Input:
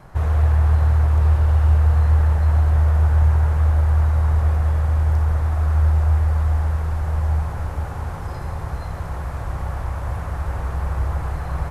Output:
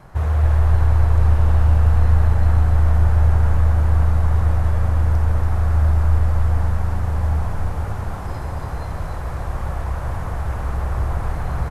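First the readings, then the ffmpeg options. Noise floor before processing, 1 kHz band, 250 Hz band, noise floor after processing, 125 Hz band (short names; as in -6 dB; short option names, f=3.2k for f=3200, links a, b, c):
-30 dBFS, +1.5 dB, +4.0 dB, -27 dBFS, +0.5 dB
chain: -filter_complex "[0:a]asplit=5[a][b][c][d][e];[b]adelay=283,afreqshift=-90,volume=-4dB[f];[c]adelay=566,afreqshift=-180,volume=-13.6dB[g];[d]adelay=849,afreqshift=-270,volume=-23.3dB[h];[e]adelay=1132,afreqshift=-360,volume=-32.9dB[i];[a][f][g][h][i]amix=inputs=5:normalize=0"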